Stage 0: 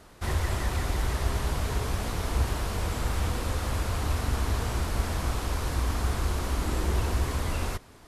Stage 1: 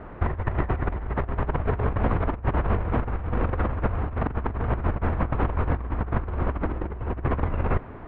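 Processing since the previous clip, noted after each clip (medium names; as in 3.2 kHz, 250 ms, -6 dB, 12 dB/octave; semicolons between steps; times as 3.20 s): Bessel low-pass 1.4 kHz, order 6; compressor with a negative ratio -32 dBFS, ratio -0.5; trim +8 dB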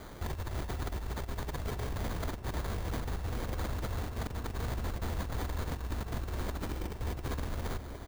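peak limiter -20.5 dBFS, peak gain reduction 11 dB; sample-rate reducer 2.7 kHz, jitter 0%; echo from a far wall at 250 m, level -9 dB; trim -6.5 dB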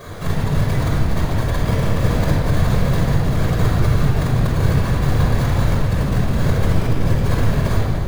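whisper effect; simulated room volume 3400 m³, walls mixed, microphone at 5.5 m; trim +8 dB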